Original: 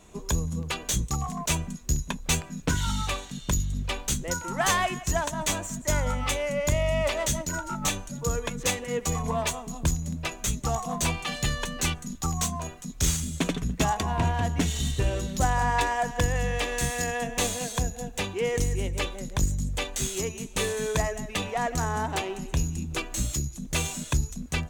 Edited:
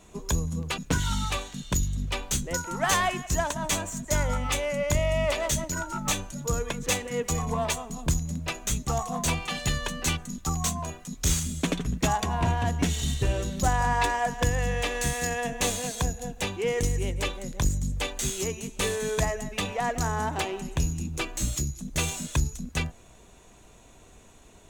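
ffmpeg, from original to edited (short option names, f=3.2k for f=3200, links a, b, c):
-filter_complex "[0:a]asplit=2[a][b];[a]atrim=end=0.782[c];[b]atrim=start=2.548[d];[c][d]acrossfade=d=0.004:c1=hsin:c2=hsin"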